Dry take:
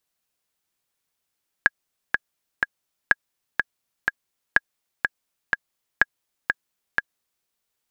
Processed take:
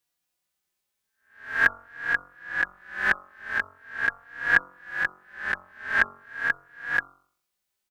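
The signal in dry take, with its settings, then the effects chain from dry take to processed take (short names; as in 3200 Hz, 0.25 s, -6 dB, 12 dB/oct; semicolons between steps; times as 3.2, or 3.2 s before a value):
metronome 124 bpm, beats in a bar 3, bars 4, 1650 Hz, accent 5 dB -1.5 dBFS
spectral swells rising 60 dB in 0.47 s; de-hum 46.13 Hz, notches 31; endless flanger 3.7 ms +0.43 Hz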